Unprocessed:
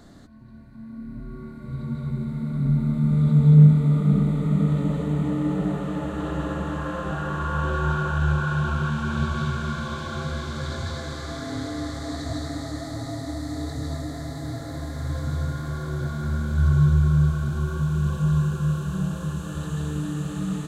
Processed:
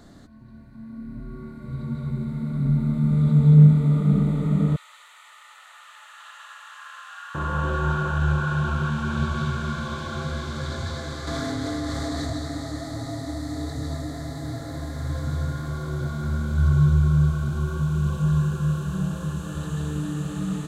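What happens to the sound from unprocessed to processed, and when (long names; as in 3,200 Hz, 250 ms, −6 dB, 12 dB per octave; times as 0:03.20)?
0:04.76–0:07.35: Bessel high-pass filter 1,800 Hz, order 6
0:11.27–0:12.30: envelope flattener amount 100%
0:15.66–0:18.25: notch filter 1,700 Hz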